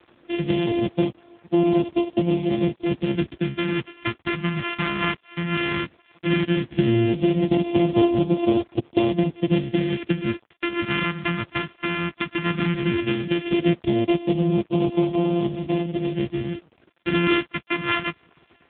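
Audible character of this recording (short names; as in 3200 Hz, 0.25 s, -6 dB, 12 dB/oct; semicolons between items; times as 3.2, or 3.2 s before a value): a buzz of ramps at a fixed pitch in blocks of 128 samples; phasing stages 2, 0.15 Hz, lowest notch 510–1500 Hz; a quantiser's noise floor 8-bit, dither none; AMR-NB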